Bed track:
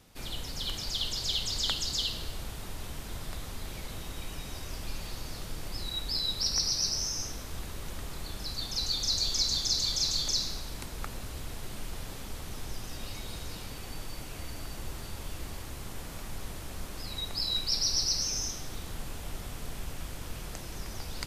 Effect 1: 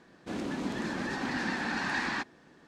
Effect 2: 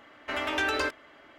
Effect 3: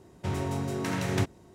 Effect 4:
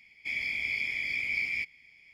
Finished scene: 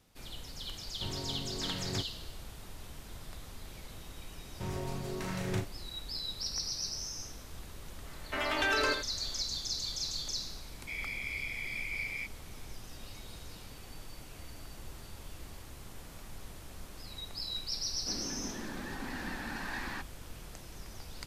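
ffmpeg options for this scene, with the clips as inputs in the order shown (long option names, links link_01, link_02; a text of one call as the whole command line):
ffmpeg -i bed.wav -i cue0.wav -i cue1.wav -i cue2.wav -i cue3.wav -filter_complex "[3:a]asplit=2[link_01][link_02];[0:a]volume=-7.5dB[link_03];[link_02]asplit=2[link_04][link_05];[link_05]adelay=38,volume=-5.5dB[link_06];[link_04][link_06]amix=inputs=2:normalize=0[link_07];[2:a]aecho=1:1:85:0.422[link_08];[link_01]atrim=end=1.54,asetpts=PTS-STARTPTS,volume=-10dB,afade=type=in:duration=0.004:curve=hsin,afade=type=out:start_time=1.536:duration=0.004:curve=hsin,adelay=770[link_09];[link_07]atrim=end=1.54,asetpts=PTS-STARTPTS,volume=-8dB,afade=type=in:duration=0.004:curve=hsin,afade=type=out:start_time=1.536:duration=0.004:curve=hsin,adelay=4360[link_10];[link_08]atrim=end=1.38,asetpts=PTS-STARTPTS,volume=-2.5dB,afade=type=in:duration=0.004:curve=hsin,afade=type=out:start_time=1.376:duration=0.004:curve=hsin,adelay=8040[link_11];[4:a]atrim=end=2.13,asetpts=PTS-STARTPTS,volume=-7dB,afade=type=in:duration=0.004:curve=hsin,afade=type=out:start_time=2.126:duration=0.004:curve=hsin,adelay=10620[link_12];[1:a]atrim=end=2.67,asetpts=PTS-STARTPTS,volume=-8dB,afade=type=in:duration=0.004:curve=hsin,afade=type=out:start_time=2.666:duration=0.004:curve=hsin,adelay=17790[link_13];[link_03][link_09][link_10][link_11][link_12][link_13]amix=inputs=6:normalize=0" out.wav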